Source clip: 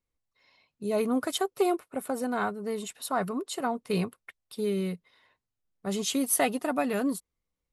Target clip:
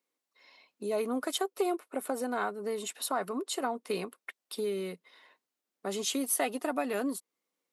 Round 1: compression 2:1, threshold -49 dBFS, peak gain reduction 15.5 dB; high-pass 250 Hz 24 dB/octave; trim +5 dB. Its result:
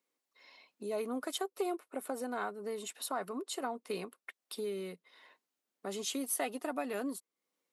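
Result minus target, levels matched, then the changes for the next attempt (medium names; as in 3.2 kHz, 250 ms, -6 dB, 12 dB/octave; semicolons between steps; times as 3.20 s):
compression: peak gain reduction +5 dB
change: compression 2:1, threshold -39 dBFS, peak gain reduction 10.5 dB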